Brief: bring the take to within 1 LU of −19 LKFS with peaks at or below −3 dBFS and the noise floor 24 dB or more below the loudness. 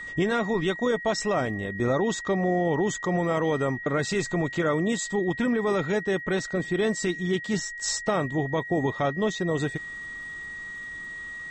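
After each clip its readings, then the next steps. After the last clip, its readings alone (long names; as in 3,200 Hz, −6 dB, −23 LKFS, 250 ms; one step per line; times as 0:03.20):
crackle rate 26 per second; interfering tone 1,900 Hz; level of the tone −35 dBFS; integrated loudness −27.0 LKFS; sample peak −14.0 dBFS; target loudness −19.0 LKFS
→ click removal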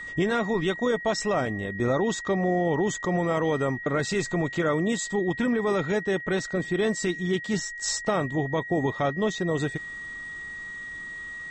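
crackle rate 0 per second; interfering tone 1,900 Hz; level of the tone −35 dBFS
→ notch filter 1,900 Hz, Q 30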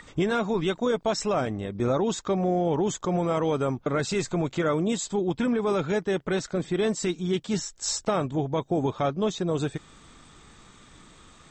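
interfering tone none found; integrated loudness −27.0 LKFS; sample peak −14.0 dBFS; target loudness −19.0 LKFS
→ level +8 dB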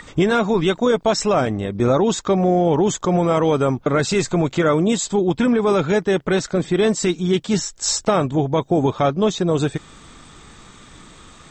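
integrated loudness −19.0 LKFS; sample peak −6.0 dBFS; background noise floor −46 dBFS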